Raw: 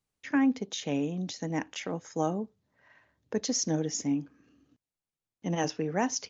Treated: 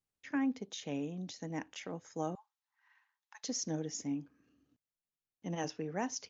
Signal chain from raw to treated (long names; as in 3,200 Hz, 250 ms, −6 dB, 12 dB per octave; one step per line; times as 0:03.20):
0:02.35–0:03.44: Chebyshev high-pass filter 810 Hz, order 6
level −8 dB